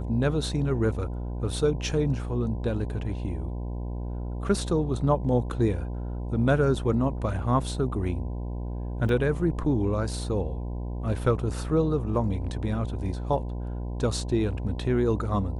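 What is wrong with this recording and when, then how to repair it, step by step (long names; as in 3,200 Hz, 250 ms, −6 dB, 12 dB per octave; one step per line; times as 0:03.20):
mains buzz 60 Hz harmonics 17 −32 dBFS
0:09.09: drop-out 2.3 ms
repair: hum removal 60 Hz, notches 17
repair the gap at 0:09.09, 2.3 ms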